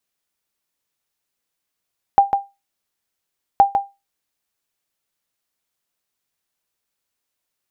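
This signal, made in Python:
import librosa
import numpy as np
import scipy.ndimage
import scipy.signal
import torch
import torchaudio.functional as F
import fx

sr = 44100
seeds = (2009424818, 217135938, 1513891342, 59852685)

y = fx.sonar_ping(sr, hz=796.0, decay_s=0.23, every_s=1.42, pings=2, echo_s=0.15, echo_db=-6.5, level_db=-3.0)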